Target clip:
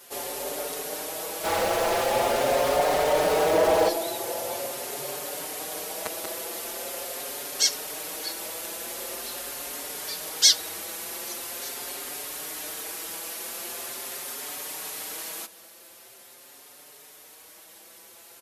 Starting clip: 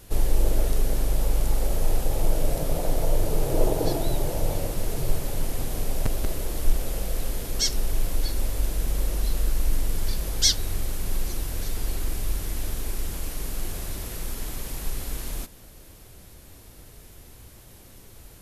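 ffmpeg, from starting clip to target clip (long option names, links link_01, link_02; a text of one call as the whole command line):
ffmpeg -i in.wav -filter_complex "[0:a]highpass=530,asplit=3[link_01][link_02][link_03];[link_01]afade=type=out:start_time=1.43:duration=0.02[link_04];[link_02]asplit=2[link_05][link_06];[link_06]highpass=frequency=720:poles=1,volume=38dB,asoftclip=type=tanh:threshold=-16dB[link_07];[link_05][link_07]amix=inputs=2:normalize=0,lowpass=frequency=1300:poles=1,volume=-6dB,afade=type=in:start_time=1.43:duration=0.02,afade=type=out:start_time=3.88:duration=0.02[link_08];[link_03]afade=type=in:start_time=3.88:duration=0.02[link_09];[link_04][link_08][link_09]amix=inputs=3:normalize=0,asplit=2[link_10][link_11];[link_11]adelay=5.3,afreqshift=0.43[link_12];[link_10][link_12]amix=inputs=2:normalize=1,volume=6.5dB" out.wav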